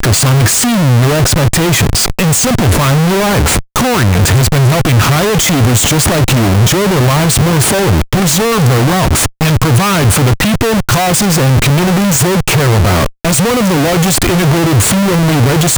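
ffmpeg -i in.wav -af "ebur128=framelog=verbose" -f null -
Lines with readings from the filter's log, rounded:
Integrated loudness:
  I:          -9.8 LUFS
  Threshold: -19.8 LUFS
Loudness range:
  LRA:         0.8 LU
  Threshold: -29.8 LUFS
  LRA low:   -10.1 LUFS
  LRA high:   -9.3 LUFS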